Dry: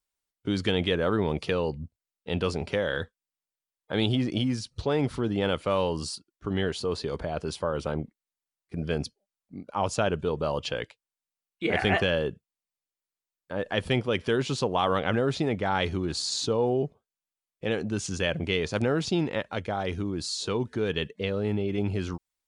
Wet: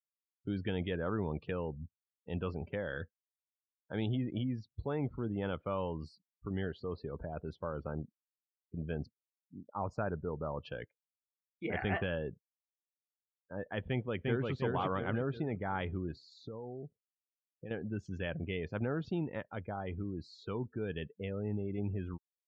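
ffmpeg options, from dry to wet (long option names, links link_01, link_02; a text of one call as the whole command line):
ffmpeg -i in.wav -filter_complex "[0:a]asettb=1/sr,asplit=3[link_01][link_02][link_03];[link_01]atrim=end=9.044[link_04];[link_02]atrim=start=9.04:end=10.63,asetpts=PTS-STARTPTS,afade=type=in:duration=0.004:curve=qsin,afade=type=out:start_time=1.586:duration=0.004:curve=qsin,asuperstop=centerf=3000:order=4:qfactor=2[link_05];[link_03]atrim=start=10.626[link_06];[link_04][link_05]acrossfade=duration=0.004:curve1=hsin:curve2=qsin[link_07];[link_07][link_06]acrossfade=duration=0.004:curve1=qsin:curve2=hsin,asplit=2[link_08][link_09];[link_09]afade=type=in:start_time=13.89:duration=0.01,afade=type=out:start_time=14.52:duration=0.01,aecho=0:1:350|700|1050|1400|1750|2100:0.841395|0.378628|0.170383|0.0766721|0.0345025|0.0155261[link_10];[link_08][link_10]amix=inputs=2:normalize=0,asettb=1/sr,asplit=3[link_11][link_12][link_13];[link_11]atrim=end=16.114[link_14];[link_12]atrim=start=16.11:end=17.71,asetpts=PTS-STARTPTS,afade=type=in:duration=0.004:curve=qsin,afade=type=out:start_time=1.596:duration=0.004:curve=qsin,acompressor=threshold=-31dB:ratio=5:attack=3.2:release=140:knee=1:detection=peak[link_15];[link_13]atrim=start=17.706[link_16];[link_14][link_15]acrossfade=duration=0.004:curve1=hsin:curve2=qsin[link_17];[link_17][link_16]acrossfade=duration=0.004:curve1=qsin:curve2=hsin,afftdn=noise_reduction=34:noise_floor=-38,lowpass=1800,equalizer=frequency=520:width_type=o:width=2.3:gain=-5,volume=-6dB" out.wav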